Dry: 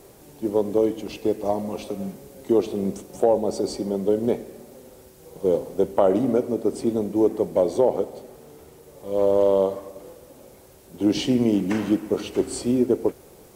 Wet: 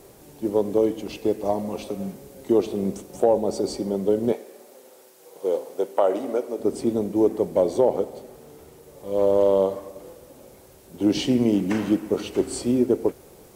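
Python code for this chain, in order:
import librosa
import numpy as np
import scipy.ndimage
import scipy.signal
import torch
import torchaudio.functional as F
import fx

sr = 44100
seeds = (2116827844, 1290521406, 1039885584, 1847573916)

y = fx.highpass(x, sr, hz=450.0, slope=12, at=(4.32, 6.6))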